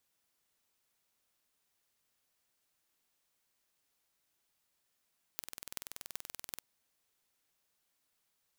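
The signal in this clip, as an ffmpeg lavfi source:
-f lavfi -i "aevalsrc='0.299*eq(mod(n,2110),0)*(0.5+0.5*eq(mod(n,16880),0))':d=1.22:s=44100"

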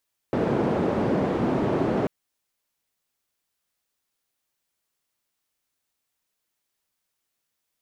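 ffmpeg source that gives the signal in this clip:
-f lavfi -i "anoisesrc=c=white:d=1.74:r=44100:seed=1,highpass=f=140,lowpass=f=420,volume=-0.3dB"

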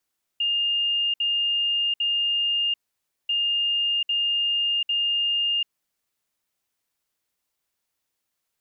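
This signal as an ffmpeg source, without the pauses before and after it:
-f lavfi -i "aevalsrc='0.0944*sin(2*PI*2820*t)*clip(min(mod(mod(t,2.89),0.8),0.74-mod(mod(t,2.89),0.8))/0.005,0,1)*lt(mod(t,2.89),2.4)':d=5.78:s=44100"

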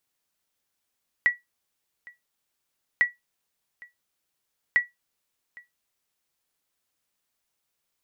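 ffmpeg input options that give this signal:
-f lavfi -i "aevalsrc='0.266*(sin(2*PI*1940*mod(t,1.75))*exp(-6.91*mod(t,1.75)/0.17)+0.0562*sin(2*PI*1940*max(mod(t,1.75)-0.81,0))*exp(-6.91*max(mod(t,1.75)-0.81,0)/0.17))':d=5.25:s=44100"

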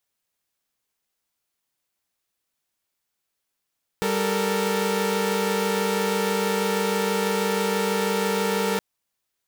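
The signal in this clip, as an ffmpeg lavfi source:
-f lavfi -i "aevalsrc='0.0668*((2*mod(196*t,1)-1)+(2*mod(440*t,1)-1)+(2*mod(466.16*t,1)-1))':d=4.77:s=44100"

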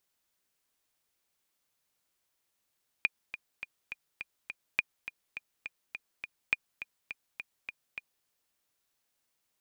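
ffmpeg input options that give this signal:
-f lavfi -i "aevalsrc='pow(10,(-12-13*gte(mod(t,6*60/207),60/207))/20)*sin(2*PI*2430*mod(t,60/207))*exp(-6.91*mod(t,60/207)/0.03)':d=5.21:s=44100"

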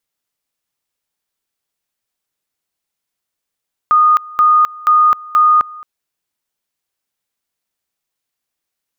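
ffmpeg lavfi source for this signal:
-f lavfi -i "aevalsrc='pow(10,(-6.5-22.5*gte(mod(t,0.48),0.26))/20)*sin(2*PI*1230*t)':d=1.92:s=44100"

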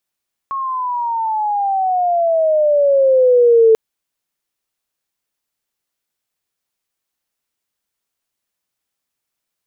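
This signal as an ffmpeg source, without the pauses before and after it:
-f lavfi -i "aevalsrc='pow(10,(-19+13*t/3.24)/20)*sin(2*PI*1100*3.24/log(440/1100)*(exp(log(440/1100)*t/3.24)-1))':d=3.24:s=44100"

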